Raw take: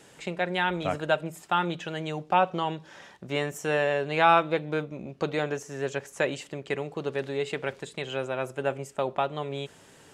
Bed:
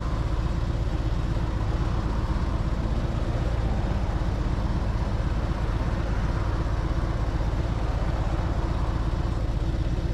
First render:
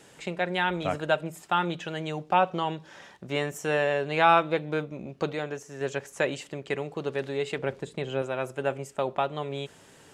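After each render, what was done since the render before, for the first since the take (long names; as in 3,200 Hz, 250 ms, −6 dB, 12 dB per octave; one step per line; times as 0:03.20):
0:05.33–0:05.81: clip gain −4 dB
0:07.58–0:08.22: tilt shelving filter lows +5 dB, about 870 Hz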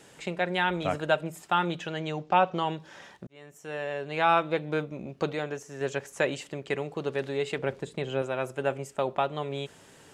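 0:01.87–0:02.56: low-pass filter 7,100 Hz 24 dB per octave
0:03.27–0:04.75: fade in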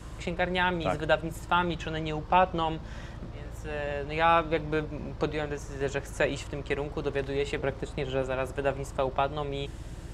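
mix in bed −15 dB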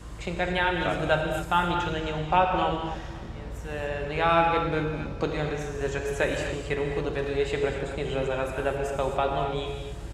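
repeating echo 272 ms, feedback 43%, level −17.5 dB
reverb whose tail is shaped and stops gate 290 ms flat, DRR 1.5 dB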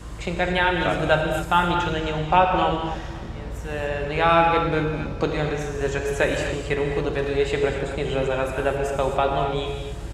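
level +4.5 dB
brickwall limiter −3 dBFS, peak gain reduction 0.5 dB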